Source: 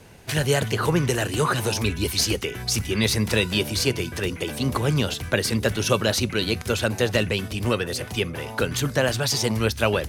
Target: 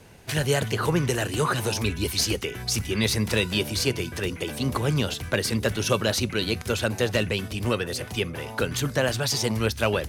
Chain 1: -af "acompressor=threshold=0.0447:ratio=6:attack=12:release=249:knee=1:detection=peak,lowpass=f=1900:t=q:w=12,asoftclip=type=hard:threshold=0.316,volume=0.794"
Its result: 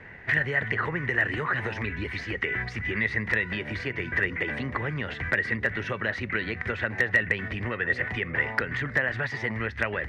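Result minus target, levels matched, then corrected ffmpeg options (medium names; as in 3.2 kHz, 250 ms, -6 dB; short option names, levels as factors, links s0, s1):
compression: peak gain reduction +12 dB; 2 kHz band +8.0 dB
-af "asoftclip=type=hard:threshold=0.316,volume=0.794"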